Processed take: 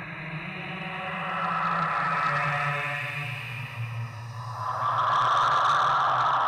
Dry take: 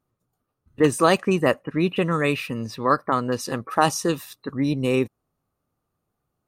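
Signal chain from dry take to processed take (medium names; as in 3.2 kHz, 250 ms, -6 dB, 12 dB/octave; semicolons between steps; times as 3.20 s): FFT filter 130 Hz 0 dB, 250 Hz -29 dB, 470 Hz -22 dB, 710 Hz +6 dB, 1.7 kHz +4 dB, 3.7 kHz -11 dB; Paulstretch 4.6×, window 0.50 s, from 1.71 s; saturation -18.5 dBFS, distortion -12 dB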